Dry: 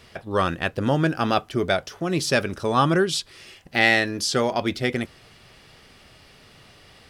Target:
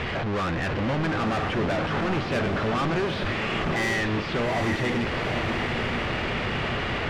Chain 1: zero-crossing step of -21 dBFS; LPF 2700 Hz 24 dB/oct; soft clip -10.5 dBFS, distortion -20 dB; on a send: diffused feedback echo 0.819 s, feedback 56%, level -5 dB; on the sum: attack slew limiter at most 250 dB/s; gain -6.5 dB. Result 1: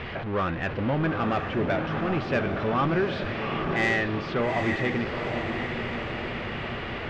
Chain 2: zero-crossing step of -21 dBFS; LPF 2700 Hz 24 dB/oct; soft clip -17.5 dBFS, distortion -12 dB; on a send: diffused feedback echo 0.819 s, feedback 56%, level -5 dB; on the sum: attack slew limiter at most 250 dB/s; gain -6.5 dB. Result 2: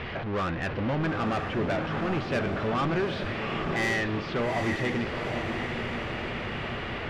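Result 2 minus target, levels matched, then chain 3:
zero-crossing step: distortion -5 dB
zero-crossing step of -13 dBFS; LPF 2700 Hz 24 dB/oct; soft clip -17.5 dBFS, distortion -12 dB; on a send: diffused feedback echo 0.819 s, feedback 56%, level -5 dB; on the sum: attack slew limiter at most 250 dB/s; gain -6.5 dB

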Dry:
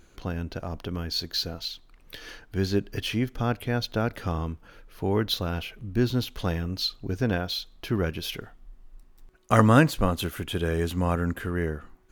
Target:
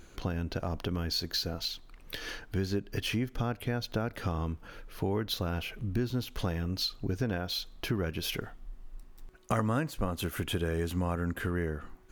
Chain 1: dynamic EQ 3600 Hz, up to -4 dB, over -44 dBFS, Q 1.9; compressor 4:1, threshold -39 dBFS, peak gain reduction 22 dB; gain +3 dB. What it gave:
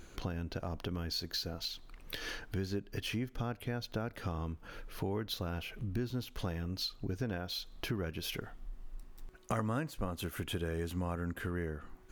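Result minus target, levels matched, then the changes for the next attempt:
compressor: peak gain reduction +5 dB
change: compressor 4:1, threshold -32 dBFS, peak gain reduction 17 dB

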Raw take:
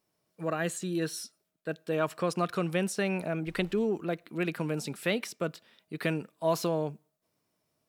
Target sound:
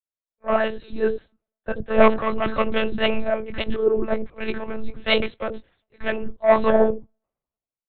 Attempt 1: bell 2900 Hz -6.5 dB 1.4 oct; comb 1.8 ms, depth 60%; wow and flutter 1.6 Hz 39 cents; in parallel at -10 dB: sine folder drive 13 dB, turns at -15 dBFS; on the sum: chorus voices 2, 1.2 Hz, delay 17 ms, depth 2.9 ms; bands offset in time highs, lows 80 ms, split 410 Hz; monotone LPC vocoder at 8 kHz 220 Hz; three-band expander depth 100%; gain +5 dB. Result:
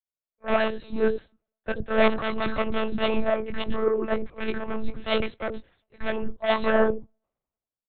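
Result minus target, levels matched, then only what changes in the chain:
sine folder: distortion +12 dB
change: sine folder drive 13 dB, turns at -9 dBFS

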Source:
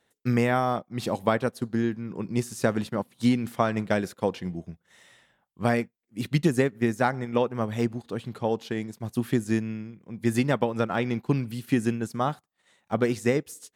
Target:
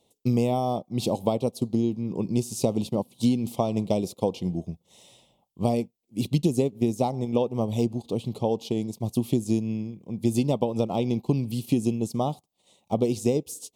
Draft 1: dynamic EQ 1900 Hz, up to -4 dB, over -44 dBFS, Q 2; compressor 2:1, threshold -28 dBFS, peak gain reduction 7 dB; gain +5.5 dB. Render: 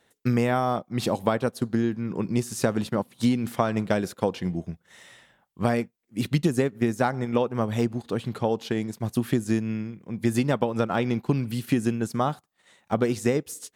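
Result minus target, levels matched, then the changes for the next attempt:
2000 Hz band +13.0 dB
add after compressor: Butterworth band-stop 1600 Hz, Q 0.8

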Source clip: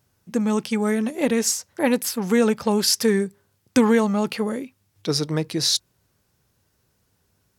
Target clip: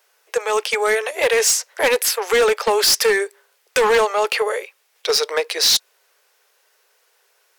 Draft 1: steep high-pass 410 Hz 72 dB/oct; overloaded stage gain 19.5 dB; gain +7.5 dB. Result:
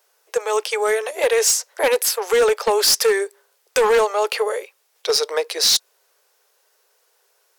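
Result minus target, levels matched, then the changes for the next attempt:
2000 Hz band -3.5 dB
add after steep high-pass: bell 2200 Hz +6 dB 1.6 oct

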